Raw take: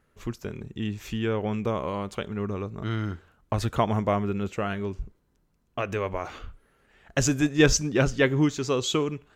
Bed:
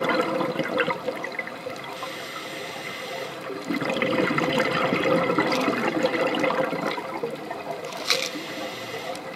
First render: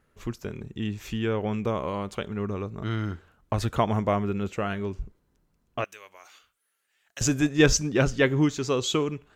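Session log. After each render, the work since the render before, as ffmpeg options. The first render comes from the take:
ffmpeg -i in.wav -filter_complex "[0:a]asettb=1/sr,asplit=3[link_01][link_02][link_03];[link_01]atrim=end=5.844[link_04];[link_02]atrim=start=5.84:end=7.21,asetpts=PTS-STARTPTS,afade=type=in:duration=0.004:curve=qsin,afade=type=out:start_time=1.366:duration=0.004:curve=qsin,aderivative[link_05];[link_03]atrim=start=7.206[link_06];[link_04][link_05]acrossfade=duration=0.004:curve1=hsin:curve2=qsin[link_07];[link_07][link_06]acrossfade=duration=0.004:curve1=qsin:curve2=hsin" out.wav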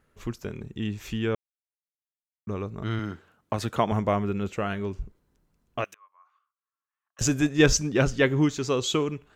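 ffmpeg -i in.wav -filter_complex "[0:a]asettb=1/sr,asplit=3[link_01][link_02][link_03];[link_01]atrim=end=2.994[link_04];[link_02]atrim=start=2.99:end=3.92,asetpts=PTS-STARTPTS,afade=type=in:duration=0.004:curve=qsin,afade=type=out:start_time=0.926:duration=0.004:curve=qsin,highpass=130[link_05];[link_03]atrim=start=3.916[link_06];[link_04][link_05]acrossfade=duration=0.004:curve1=hsin:curve2=qsin[link_07];[link_07][link_06]acrossfade=duration=0.004:curve1=qsin:curve2=hsin,asettb=1/sr,asplit=3[link_08][link_09][link_10];[link_08]atrim=end=5.944[link_11];[link_09]atrim=start=5.94:end=7.19,asetpts=PTS-STARTPTS,afade=type=in:duration=0.004:curve=qsin,afade=type=out:start_time=1.246:duration=0.004:curve=qsin,bandpass=frequency=1100:width_type=q:width=12[link_12];[link_10]atrim=start=7.186[link_13];[link_11][link_12]acrossfade=duration=0.004:curve1=hsin:curve2=qsin[link_14];[link_14][link_13]acrossfade=duration=0.004:curve1=qsin:curve2=hsin,asplit=3[link_15][link_16][link_17];[link_15]atrim=end=1.35,asetpts=PTS-STARTPTS,afade=type=out:start_time=1.346:duration=0.004:curve=hsin[link_18];[link_16]atrim=start=1.35:end=2.47,asetpts=PTS-STARTPTS,volume=0[link_19];[link_17]atrim=start=2.47,asetpts=PTS-STARTPTS,afade=type=in:duration=0.004:curve=hsin[link_20];[link_18][link_19][link_20]concat=n=3:v=0:a=1" out.wav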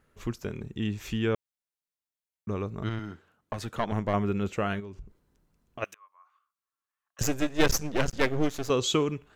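ffmpeg -i in.wav -filter_complex "[0:a]asettb=1/sr,asplit=3[link_01][link_02][link_03];[link_01]atrim=end=2.894[link_04];[link_02]atrim=start=2.89:end=4.14,asetpts=PTS-STARTPTS,afade=type=in:duration=0.004:curve=qsin,afade=type=out:start_time=1.246:duration=0.004:curve=qsin,aeval=exprs='(tanh(5.01*val(0)+0.8)-tanh(0.8))/5.01':channel_layout=same[link_05];[link_03]atrim=start=4.136[link_06];[link_04][link_05]acrossfade=duration=0.004:curve1=hsin:curve2=qsin[link_07];[link_07][link_06]acrossfade=duration=0.004:curve1=qsin:curve2=hsin,asplit=3[link_08][link_09][link_10];[link_08]afade=type=out:start_time=4.79:duration=0.02[link_11];[link_09]acompressor=threshold=-43dB:ratio=2.5:attack=3.2:release=140:knee=1:detection=peak,afade=type=in:start_time=4.79:duration=0.02,afade=type=out:start_time=5.81:duration=0.02[link_12];[link_10]afade=type=in:start_time=5.81:duration=0.02[link_13];[link_11][link_12][link_13]amix=inputs=3:normalize=0,asettb=1/sr,asplit=3[link_14][link_15][link_16];[link_14]atrim=end=7.224[link_17];[link_15]atrim=start=7.22:end=8.7,asetpts=PTS-STARTPTS,afade=type=in:duration=0.004:curve=qsin,afade=type=out:start_time=1.476:duration=0.004:curve=qsin,aeval=exprs='max(val(0),0)':channel_layout=same[link_18];[link_16]atrim=start=8.696[link_19];[link_17][link_18]acrossfade=duration=0.004:curve1=hsin:curve2=qsin[link_20];[link_20][link_19]acrossfade=duration=0.004:curve1=qsin:curve2=hsin" out.wav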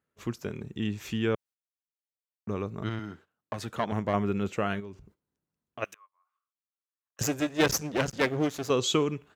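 ffmpeg -i in.wav -af "agate=range=-15dB:threshold=-51dB:ratio=16:detection=peak,highpass=96" out.wav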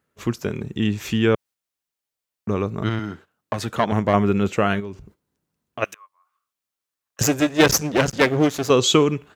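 ffmpeg -i in.wav -af "volume=9.5dB,alimiter=limit=-2dB:level=0:latency=1" out.wav

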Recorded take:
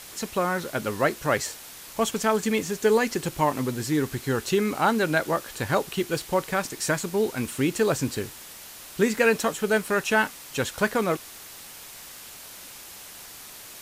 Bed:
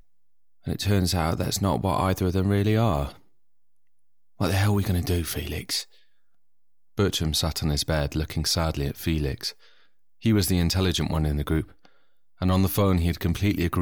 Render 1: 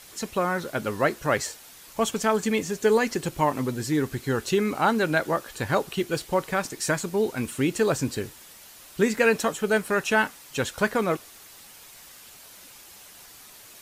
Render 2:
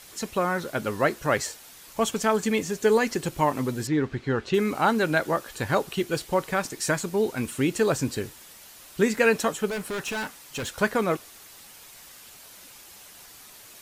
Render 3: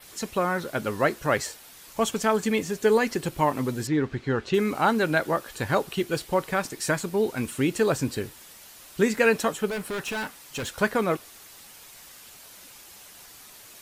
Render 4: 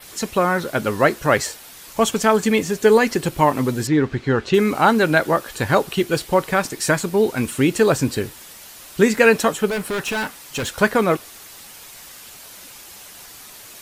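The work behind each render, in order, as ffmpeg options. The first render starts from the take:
ffmpeg -i in.wav -af "afftdn=noise_reduction=6:noise_floor=-44" out.wav
ffmpeg -i in.wav -filter_complex "[0:a]asettb=1/sr,asplit=3[link_01][link_02][link_03];[link_01]atrim=end=3.874[link_04];[link_02]atrim=start=3.87:end=4.54,asetpts=PTS-STARTPTS,afade=type=in:duration=0.004:curve=qsin,afade=type=out:start_time=0.666:duration=0.004:curve=qsin,lowpass=3300[link_05];[link_03]atrim=start=4.536[link_06];[link_04][link_05]acrossfade=duration=0.004:curve1=hsin:curve2=qsin[link_07];[link_07][link_06]acrossfade=duration=0.004:curve1=qsin:curve2=hsin,asettb=1/sr,asplit=3[link_08][link_09][link_10];[link_08]atrim=end=9.684[link_11];[link_09]atrim=start=9.68:end=10.81,asetpts=PTS-STARTPTS,afade=type=in:duration=0.004:curve=qsin,afade=type=out:start_time=1.126:duration=0.004:curve=qsin,volume=28dB,asoftclip=hard,volume=-28dB[link_12];[link_10]atrim=start=10.806[link_13];[link_11][link_12]acrossfade=duration=0.004:curve1=hsin:curve2=qsin[link_14];[link_14][link_13]acrossfade=duration=0.004:curve1=qsin:curve2=hsin" out.wav
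ffmpeg -i in.wav -af "adynamicequalizer=threshold=0.00355:dfrequency=6600:dqfactor=2:tfrequency=6600:tqfactor=2:attack=5:release=100:ratio=0.375:range=2:mode=cutabove:tftype=bell" out.wav
ffmpeg -i in.wav -af "volume=7dB" out.wav

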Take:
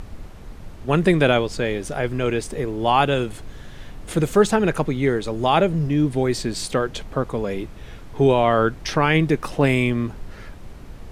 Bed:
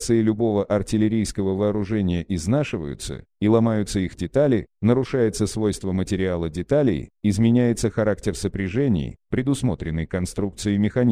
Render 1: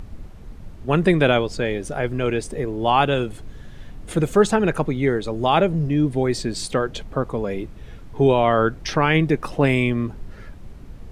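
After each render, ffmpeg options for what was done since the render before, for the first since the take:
ffmpeg -i in.wav -af "afftdn=noise_reduction=6:noise_floor=-39" out.wav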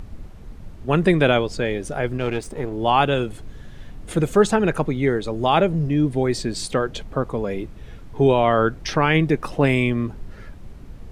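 ffmpeg -i in.wav -filter_complex "[0:a]asettb=1/sr,asplit=3[link_01][link_02][link_03];[link_01]atrim=end=2.174[link_04];[link_02]atrim=start=2.17:end=2.73,asetpts=PTS-STARTPTS,afade=type=in:duration=0.004:curve=qsin,afade=type=out:start_time=0.556:duration=0.004:curve=qsin,aeval=exprs='if(lt(val(0),0),0.447*val(0),val(0))':channel_layout=same[link_05];[link_03]atrim=start=2.726[link_06];[link_04][link_05]acrossfade=duration=0.004:curve1=hsin:curve2=qsin[link_07];[link_07][link_06]acrossfade=duration=0.004:curve1=qsin:curve2=hsin" out.wav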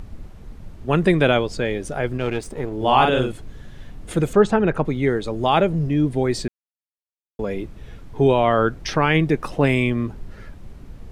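ffmpeg -i in.wav -filter_complex "[0:a]asettb=1/sr,asplit=3[link_01][link_02][link_03];[link_01]atrim=end=2.764[link_04];[link_02]atrim=start=2.76:end=3.32,asetpts=PTS-STARTPTS,afade=type=in:duration=0.004:curve=qsin,afade=type=out:start_time=0.556:duration=0.004:curve=qsin,asplit=2[link_05][link_06];[link_06]adelay=47,volume=-3dB[link_07];[link_05][link_07]amix=inputs=2:normalize=0,atrim=end_sample=24696[link_08];[link_03]atrim=start=3.316[link_09];[link_04][link_08]acrossfade=duration=0.004:curve1=hsin:curve2=qsin[link_10];[link_10][link_09]acrossfade=duration=0.004:curve1=qsin:curve2=hsin,asettb=1/sr,asplit=3[link_11][link_12][link_13];[link_11]atrim=end=4.334[link_14];[link_12]atrim=start=4.33:end=4.85,asetpts=PTS-STARTPTS,afade=type=in:duration=0.004:curve=qsin,afade=type=out:start_time=0.516:duration=0.004:curve=qsin,aemphasis=mode=reproduction:type=75fm[link_15];[link_13]atrim=start=4.846[link_16];[link_14][link_15]acrossfade=duration=0.004:curve1=hsin:curve2=qsin[link_17];[link_17][link_16]acrossfade=duration=0.004:curve1=qsin:curve2=hsin,asplit=3[link_18][link_19][link_20];[link_18]atrim=end=6.48,asetpts=PTS-STARTPTS,afade=type=out:start_time=6.476:duration=0.004:curve=hsin[link_21];[link_19]atrim=start=6.48:end=7.39,asetpts=PTS-STARTPTS,volume=0[link_22];[link_20]atrim=start=7.39,asetpts=PTS-STARTPTS,afade=type=in:duration=0.004:curve=hsin[link_23];[link_21][link_22][link_23]concat=n=3:v=0:a=1" out.wav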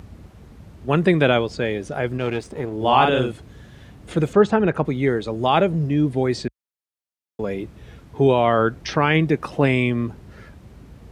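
ffmpeg -i in.wav -filter_complex "[0:a]acrossover=split=6600[link_01][link_02];[link_02]acompressor=threshold=-54dB:ratio=4:attack=1:release=60[link_03];[link_01][link_03]amix=inputs=2:normalize=0,highpass=frequency=55:width=0.5412,highpass=frequency=55:width=1.3066" out.wav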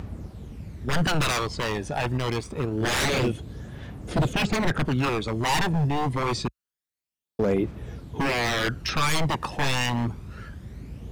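ffmpeg -i in.wav -af "aeval=exprs='0.106*(abs(mod(val(0)/0.106+3,4)-2)-1)':channel_layout=same,aphaser=in_gain=1:out_gain=1:delay=1.2:decay=0.47:speed=0.26:type=triangular" out.wav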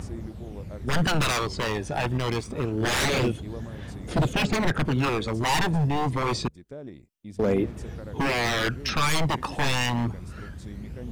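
ffmpeg -i in.wav -i bed.wav -filter_complex "[1:a]volume=-21.5dB[link_01];[0:a][link_01]amix=inputs=2:normalize=0" out.wav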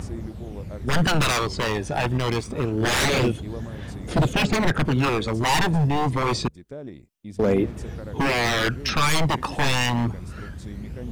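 ffmpeg -i in.wav -af "volume=3dB" out.wav

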